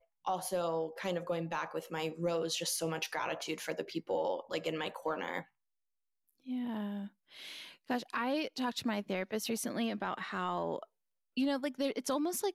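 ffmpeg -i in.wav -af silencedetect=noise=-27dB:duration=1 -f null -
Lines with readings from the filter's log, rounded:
silence_start: 5.39
silence_end: 7.90 | silence_duration: 2.52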